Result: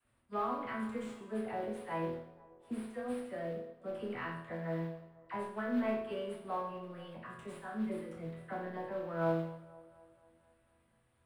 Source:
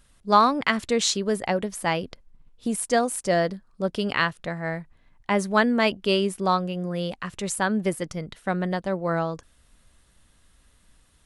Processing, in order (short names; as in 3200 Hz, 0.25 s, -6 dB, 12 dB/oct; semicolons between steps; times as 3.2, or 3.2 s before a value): HPF 46 Hz; resonant high shelf 6200 Hz +14 dB, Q 3; compressor 4:1, threshold -22 dBFS, peak gain reduction 13.5 dB; soft clip -15 dBFS, distortion -20 dB; resonator bank E2 sus4, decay 0.7 s; dispersion lows, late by 52 ms, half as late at 900 Hz; modulation noise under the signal 13 dB; air absorption 440 m; band-limited delay 0.242 s, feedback 56%, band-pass 650 Hz, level -17 dB; reverb RT60 0.70 s, pre-delay 3 ms, DRR 9.5 dB; gain +7.5 dB